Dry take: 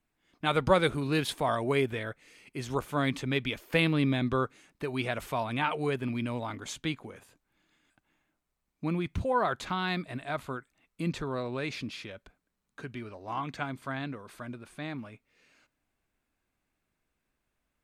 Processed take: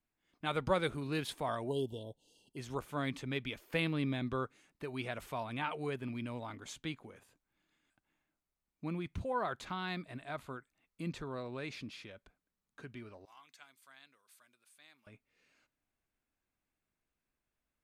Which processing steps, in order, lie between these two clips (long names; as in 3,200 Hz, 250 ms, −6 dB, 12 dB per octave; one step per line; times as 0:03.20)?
0:01.68–0:02.57: linear-phase brick-wall band-stop 990–2,700 Hz
0:13.25–0:15.07: first difference
level −8 dB